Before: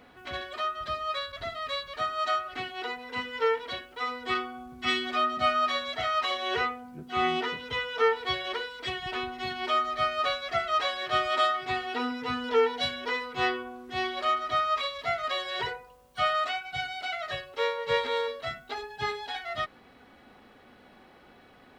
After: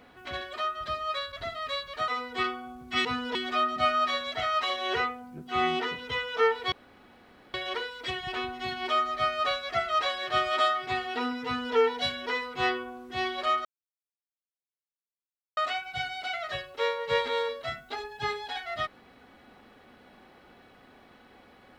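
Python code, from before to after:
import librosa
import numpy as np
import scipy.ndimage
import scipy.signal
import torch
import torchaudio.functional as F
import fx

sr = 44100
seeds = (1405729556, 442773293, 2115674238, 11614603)

y = fx.edit(x, sr, fx.cut(start_s=2.08, length_s=1.91),
    fx.insert_room_tone(at_s=8.33, length_s=0.82),
    fx.duplicate(start_s=12.24, length_s=0.3, to_s=4.96),
    fx.silence(start_s=14.44, length_s=1.92), tone=tone)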